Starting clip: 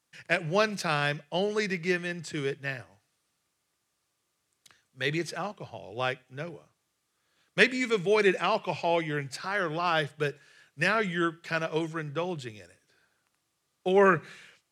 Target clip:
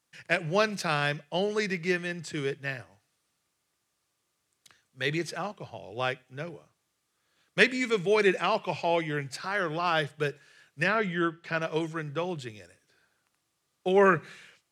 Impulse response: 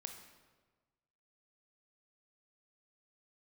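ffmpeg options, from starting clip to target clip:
-filter_complex "[0:a]asettb=1/sr,asplit=3[a][b][c];[a]atrim=end=10.834[d];[b]atrim=start=10.83:end=11.62,asetpts=PTS-STARTPTS,afade=t=in:d=0.004:c=qsin,afade=t=out:st=0.786:d=0.004:c=qsin,aemphasis=mode=reproduction:type=50fm[e];[c]atrim=start=11.616[f];[d][e]acrossfade=d=0.004:c1=hsin:c2=qsin[g];[g][f]acrossfade=d=0.004:c1=qsin:c2=hsin"

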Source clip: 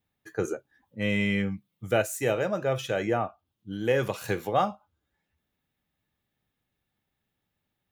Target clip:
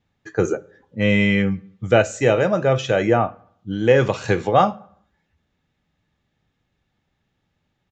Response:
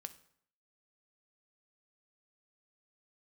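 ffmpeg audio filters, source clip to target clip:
-filter_complex "[0:a]asplit=2[a][b];[1:a]atrim=start_sample=2205,lowshelf=f=180:g=6.5,highshelf=f=4.5k:g=-10.5[c];[b][c]afir=irnorm=-1:irlink=0,volume=2dB[d];[a][d]amix=inputs=2:normalize=0,aresample=16000,aresample=44100,volume=4.5dB"

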